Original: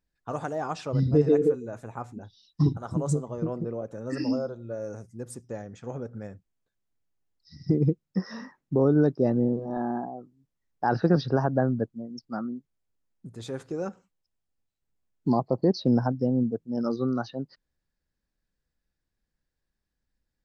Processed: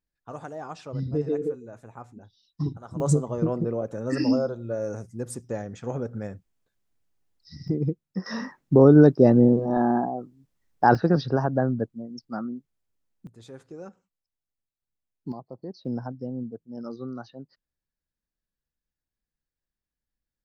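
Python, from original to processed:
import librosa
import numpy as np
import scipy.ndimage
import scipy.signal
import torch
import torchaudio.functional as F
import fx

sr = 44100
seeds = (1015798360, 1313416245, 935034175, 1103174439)

y = fx.gain(x, sr, db=fx.steps((0.0, -6.0), (3.0, 5.0), (7.68, -3.0), (8.26, 7.5), (10.95, 0.5), (13.27, -9.0), (15.32, -15.5), (15.85, -8.5)))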